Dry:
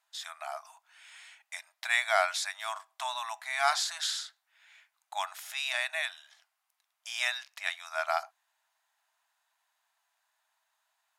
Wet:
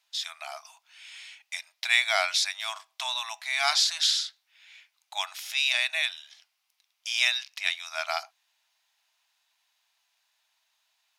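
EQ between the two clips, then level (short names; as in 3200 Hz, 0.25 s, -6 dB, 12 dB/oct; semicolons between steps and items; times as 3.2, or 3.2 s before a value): band shelf 3600 Hz +9.5 dB; high shelf 5500 Hz +5.5 dB; -2.0 dB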